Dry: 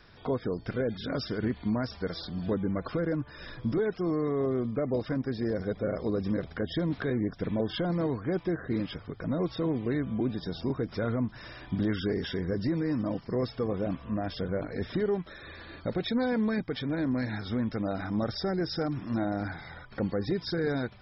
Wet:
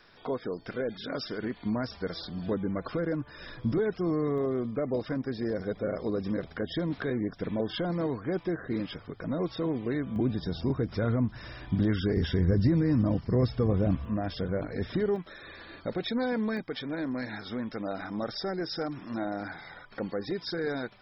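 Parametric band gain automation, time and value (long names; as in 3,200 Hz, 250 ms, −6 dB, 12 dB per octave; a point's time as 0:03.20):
parametric band 64 Hz 2.6 octaves
−14.5 dB
from 0:01.63 −4 dB
from 0:03.64 +3 dB
from 0:04.38 −5 dB
from 0:10.16 +6.5 dB
from 0:12.17 +14.5 dB
from 0:14.05 +2.5 dB
from 0:15.16 −8 dB
from 0:16.57 −15 dB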